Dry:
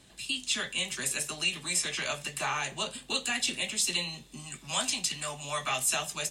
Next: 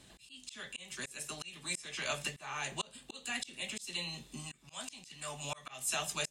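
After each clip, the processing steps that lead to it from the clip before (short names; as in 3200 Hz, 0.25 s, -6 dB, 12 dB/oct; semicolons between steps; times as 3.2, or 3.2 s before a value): auto swell 0.428 s; gain -1 dB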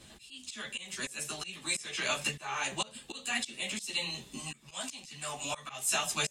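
ensemble effect; gain +8 dB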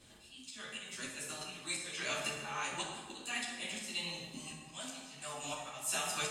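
plate-style reverb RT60 1.5 s, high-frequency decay 0.6×, DRR -1 dB; gain -7.5 dB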